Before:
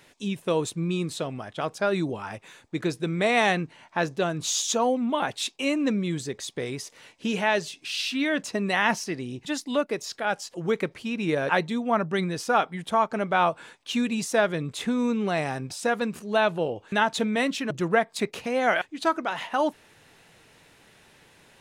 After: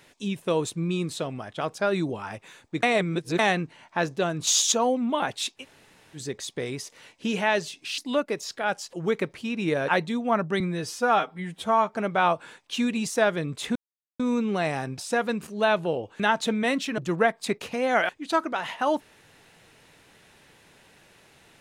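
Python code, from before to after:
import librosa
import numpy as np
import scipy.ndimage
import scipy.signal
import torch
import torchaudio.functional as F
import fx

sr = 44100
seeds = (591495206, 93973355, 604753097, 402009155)

y = fx.edit(x, sr, fx.reverse_span(start_s=2.83, length_s=0.56),
    fx.clip_gain(start_s=4.47, length_s=0.25, db=5.0),
    fx.room_tone_fill(start_s=5.6, length_s=0.58, crossfade_s=0.1),
    fx.cut(start_s=7.98, length_s=1.61),
    fx.stretch_span(start_s=12.21, length_s=0.89, factor=1.5),
    fx.insert_silence(at_s=14.92, length_s=0.44), tone=tone)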